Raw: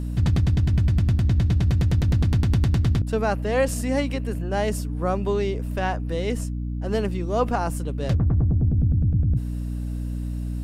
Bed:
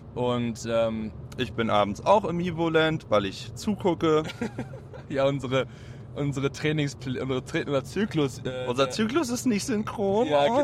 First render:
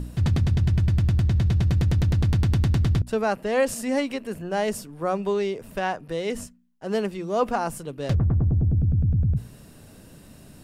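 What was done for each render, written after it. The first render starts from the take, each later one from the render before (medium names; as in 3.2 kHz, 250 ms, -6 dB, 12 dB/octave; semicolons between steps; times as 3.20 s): de-hum 60 Hz, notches 5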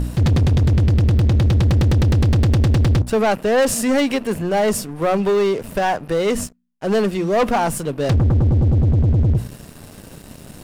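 waveshaping leveller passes 3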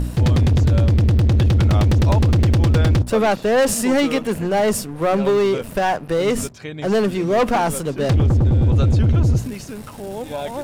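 add bed -6 dB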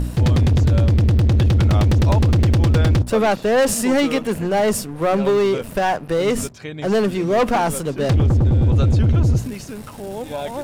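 no audible change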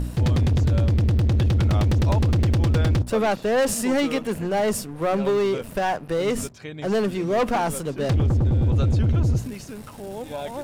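trim -4.5 dB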